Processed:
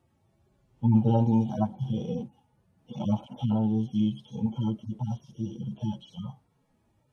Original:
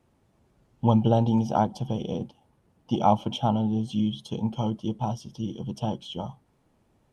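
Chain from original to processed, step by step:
harmonic-percussive split with one part muted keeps harmonic
0:01.70–0:02.13: double-tracking delay 22 ms −7.5 dB

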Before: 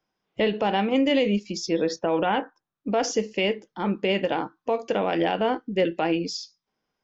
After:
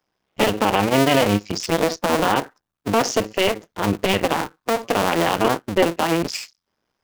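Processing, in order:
sub-harmonics by changed cycles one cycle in 2, muted
level +7.5 dB

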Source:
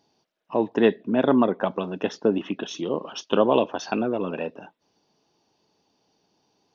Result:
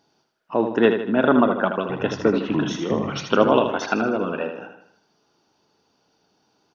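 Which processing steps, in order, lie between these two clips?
parametric band 1,400 Hz +11 dB 0.34 octaves
0:01.79–0:03.86: delay with pitch and tempo change per echo 103 ms, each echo −6 semitones, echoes 2, each echo −6 dB
repeating echo 78 ms, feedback 48%, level −7.5 dB
level +1.5 dB

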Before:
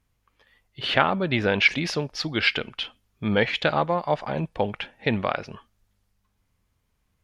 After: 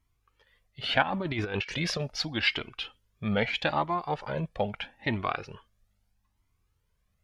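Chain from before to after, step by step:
0:01.02–0:02.25: compressor whose output falls as the input rises −25 dBFS, ratio −0.5
flanger whose copies keep moving one way rising 0.78 Hz

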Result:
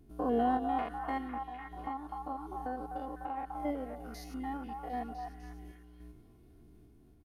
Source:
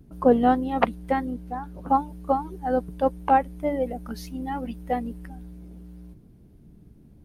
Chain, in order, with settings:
spectrum averaged block by block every 100 ms
low-shelf EQ 210 Hz −4.5 dB
comb filter 2.8 ms, depth 56%
brickwall limiter −19.5 dBFS, peak gain reduction 7.5 dB
0:01.20–0:03.60: downward compressor 2.5 to 1, threshold −33 dBFS, peak gain reduction 6.5 dB
sample-and-hold tremolo
echo through a band-pass that steps 251 ms, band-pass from 980 Hz, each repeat 0.7 octaves, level −2 dB
level −2.5 dB

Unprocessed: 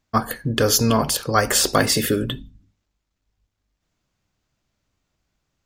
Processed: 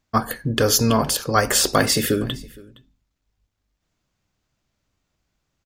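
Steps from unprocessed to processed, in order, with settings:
single-tap delay 465 ms −23 dB

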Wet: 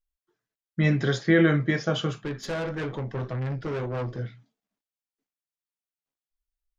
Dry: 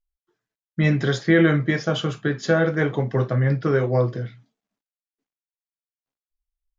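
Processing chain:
0:02.24–0:04.19: tube saturation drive 24 dB, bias 0.45
level −3 dB

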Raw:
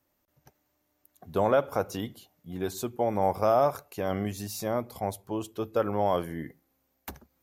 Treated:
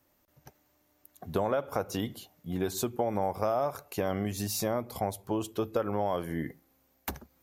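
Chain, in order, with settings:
downward compressor 4 to 1, threshold −32 dBFS, peak gain reduction 12 dB
level +5 dB

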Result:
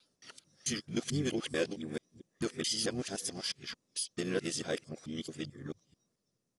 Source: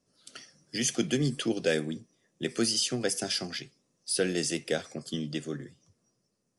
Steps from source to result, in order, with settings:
reversed piece by piece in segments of 220 ms
pitch-shifted copies added −7 semitones −10 dB
level −6 dB

